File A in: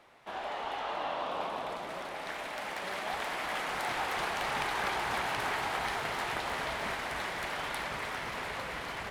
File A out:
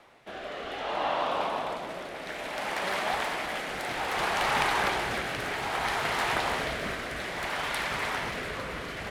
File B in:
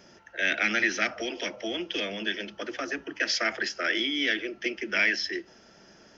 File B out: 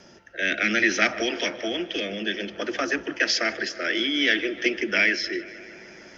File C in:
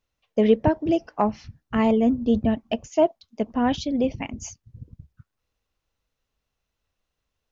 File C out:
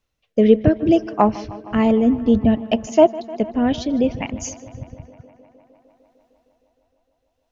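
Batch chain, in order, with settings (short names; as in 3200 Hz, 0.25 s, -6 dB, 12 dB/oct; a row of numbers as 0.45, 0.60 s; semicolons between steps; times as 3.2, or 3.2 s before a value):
rotary speaker horn 0.6 Hz; on a send: tape echo 0.153 s, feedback 86%, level -18 dB, low-pass 4200 Hz; on the sum: gain +7 dB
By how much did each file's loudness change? +4.5, +4.0, +5.0 LU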